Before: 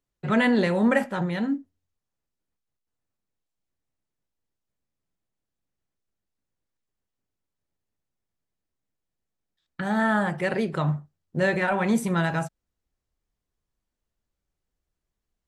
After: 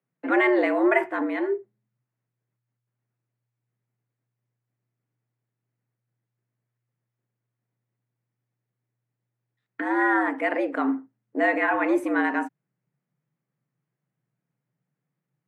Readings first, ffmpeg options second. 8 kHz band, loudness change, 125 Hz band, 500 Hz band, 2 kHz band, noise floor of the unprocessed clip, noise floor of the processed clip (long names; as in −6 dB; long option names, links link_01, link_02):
below −10 dB, +1.0 dB, below −30 dB, +2.0 dB, +3.0 dB, −85 dBFS, −85 dBFS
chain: -af "highshelf=frequency=2800:width_type=q:width=1.5:gain=-11.5,afreqshift=120"